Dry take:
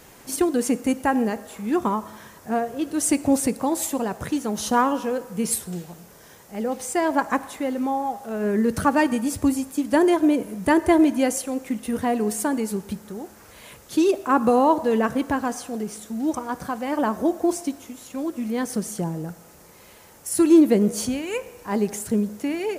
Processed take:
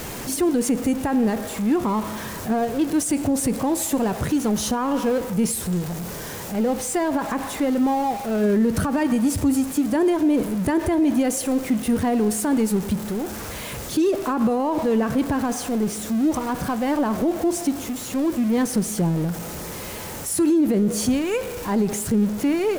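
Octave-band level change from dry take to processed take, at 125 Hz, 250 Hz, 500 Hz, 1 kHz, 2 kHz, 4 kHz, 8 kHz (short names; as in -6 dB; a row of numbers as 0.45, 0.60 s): +6.5, +2.0, 0.0, -2.0, -1.5, +3.0, +2.0 dB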